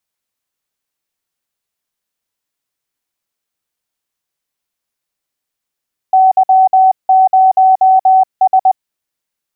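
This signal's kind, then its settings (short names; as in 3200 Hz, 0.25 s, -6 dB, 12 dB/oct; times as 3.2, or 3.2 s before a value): Morse "Y0S" 20 wpm 757 Hz -4.5 dBFS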